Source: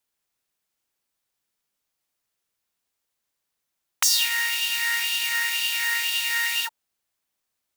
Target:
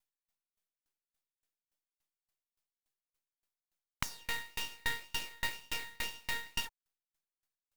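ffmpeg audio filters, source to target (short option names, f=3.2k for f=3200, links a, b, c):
-filter_complex "[0:a]acrossover=split=3000[a][b];[b]acompressor=threshold=-31dB:ratio=4:attack=1:release=60[c];[a][c]amix=inputs=2:normalize=0,aeval=exprs='max(val(0),0)':c=same,aeval=exprs='val(0)*pow(10,-35*if(lt(mod(3.5*n/s,1),2*abs(3.5)/1000),1-mod(3.5*n/s,1)/(2*abs(3.5)/1000),(mod(3.5*n/s,1)-2*abs(3.5)/1000)/(1-2*abs(3.5)/1000))/20)':c=same"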